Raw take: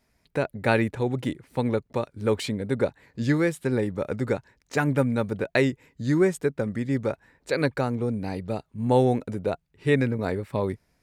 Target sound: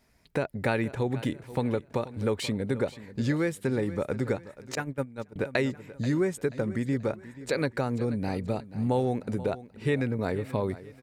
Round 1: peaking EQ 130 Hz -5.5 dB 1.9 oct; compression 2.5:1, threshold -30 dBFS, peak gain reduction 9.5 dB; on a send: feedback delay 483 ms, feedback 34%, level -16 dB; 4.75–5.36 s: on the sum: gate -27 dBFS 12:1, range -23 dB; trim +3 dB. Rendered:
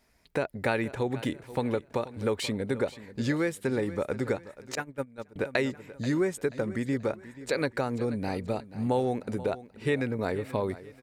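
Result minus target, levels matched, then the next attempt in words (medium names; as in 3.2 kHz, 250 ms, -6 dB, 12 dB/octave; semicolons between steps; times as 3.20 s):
125 Hz band -3.0 dB
compression 2.5:1, threshold -30 dBFS, peak gain reduction 10.5 dB; on a send: feedback delay 483 ms, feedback 34%, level -16 dB; 4.75–5.36 s: on the sum: gate -27 dBFS 12:1, range -23 dB; trim +3 dB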